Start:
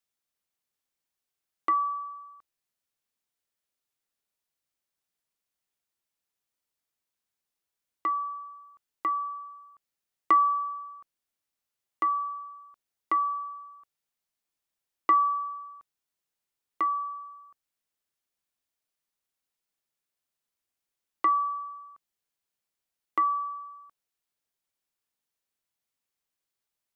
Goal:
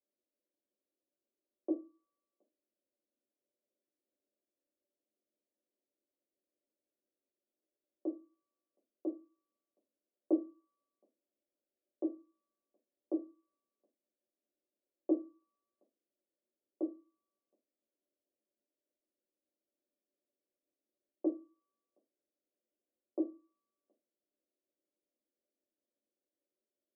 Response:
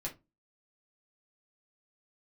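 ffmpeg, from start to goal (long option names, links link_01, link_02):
-filter_complex "[0:a]asuperpass=centerf=380:order=12:qfactor=0.89[link_01];[1:a]atrim=start_sample=2205[link_02];[link_01][link_02]afir=irnorm=-1:irlink=0,volume=6dB"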